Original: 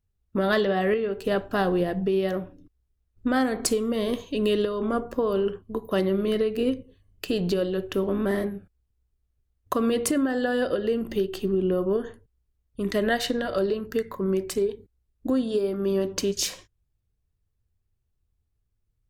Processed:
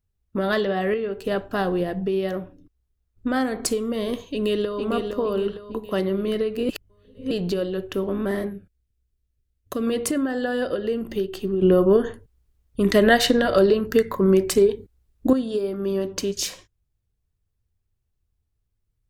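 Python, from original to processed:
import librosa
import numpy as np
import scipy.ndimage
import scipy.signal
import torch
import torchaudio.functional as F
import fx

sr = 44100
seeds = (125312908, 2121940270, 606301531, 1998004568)

y = fx.echo_throw(x, sr, start_s=4.31, length_s=0.49, ms=460, feedback_pct=45, wet_db=-5.5)
y = fx.peak_eq(y, sr, hz=940.0, db=-14.5, octaves=0.69, at=(8.53, 9.87))
y = fx.edit(y, sr, fx.reverse_span(start_s=6.69, length_s=0.62),
    fx.clip_gain(start_s=11.62, length_s=3.71, db=8.0), tone=tone)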